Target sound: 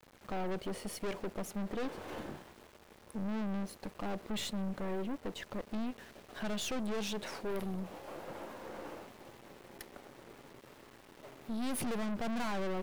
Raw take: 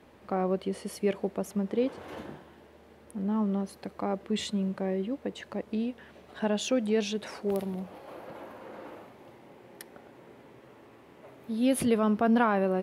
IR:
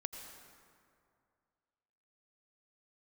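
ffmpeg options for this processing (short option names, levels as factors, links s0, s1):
-af "aeval=exprs='(tanh(70.8*val(0)+0.6)-tanh(0.6))/70.8':c=same,aeval=exprs='val(0)*gte(abs(val(0)),0.00188)':c=same,volume=1.26"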